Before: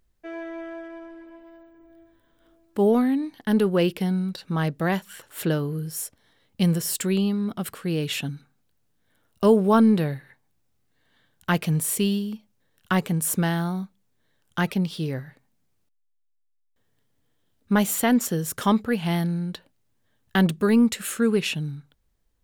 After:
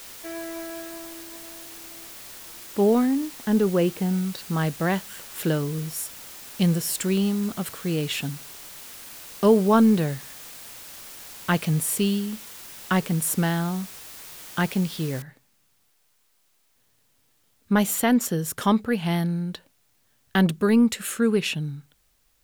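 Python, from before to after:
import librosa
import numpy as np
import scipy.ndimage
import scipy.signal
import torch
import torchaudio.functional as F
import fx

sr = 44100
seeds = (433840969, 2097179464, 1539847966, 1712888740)

y = fx.lowpass(x, sr, hz=1500.0, slope=6, at=(3.05, 4.12), fade=0.02)
y = fx.noise_floor_step(y, sr, seeds[0], at_s=15.22, before_db=-42, after_db=-68, tilt_db=0.0)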